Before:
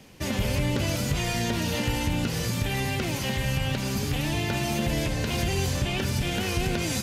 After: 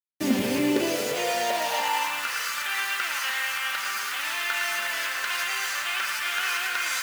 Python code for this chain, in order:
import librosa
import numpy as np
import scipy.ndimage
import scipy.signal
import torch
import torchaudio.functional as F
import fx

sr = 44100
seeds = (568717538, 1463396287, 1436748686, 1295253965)

y = fx.echo_banded(x, sr, ms=110, feedback_pct=82, hz=1800.0, wet_db=-5.0)
y = fx.quant_dither(y, sr, seeds[0], bits=6, dither='none')
y = fx.filter_sweep_highpass(y, sr, from_hz=260.0, to_hz=1300.0, start_s=0.41, end_s=2.38, q=3.8)